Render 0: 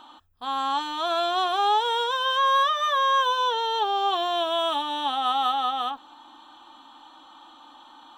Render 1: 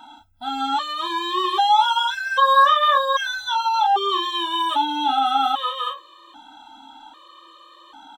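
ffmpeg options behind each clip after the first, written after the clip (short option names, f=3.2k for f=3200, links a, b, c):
-af "aecho=1:1:30|44:0.562|0.316,afftfilt=real='re*gt(sin(2*PI*0.63*pts/sr)*(1-2*mod(floor(b*sr/1024/320),2)),0)':imag='im*gt(sin(2*PI*0.63*pts/sr)*(1-2*mod(floor(b*sr/1024/320),2)),0)':win_size=1024:overlap=0.75,volume=5.5dB"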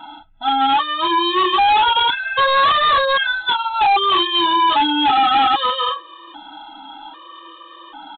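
-af "aecho=1:1:6.1:0.74,aresample=8000,asoftclip=type=hard:threshold=-18.5dB,aresample=44100,volume=6.5dB"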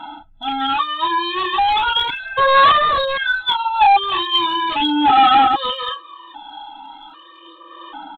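-af "aphaser=in_gain=1:out_gain=1:delay=1.2:decay=0.55:speed=0.38:type=sinusoidal,volume=-3dB"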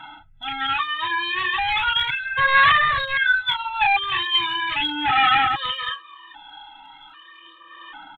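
-af "equalizer=f=125:t=o:w=1:g=10,equalizer=f=250:t=o:w=1:g=-10,equalizer=f=500:t=o:w=1:g=-11,equalizer=f=1k:t=o:w=1:g=-5,equalizer=f=2k:t=o:w=1:g=12,equalizer=f=4k:t=o:w=1:g=-5,volume=-3dB"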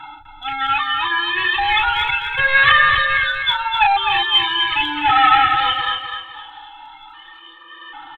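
-filter_complex "[0:a]aecho=1:1:2.3:0.7,asplit=2[a][b];[b]aecho=0:1:252|504|756|1008:0.501|0.175|0.0614|0.0215[c];[a][c]amix=inputs=2:normalize=0,volume=1.5dB"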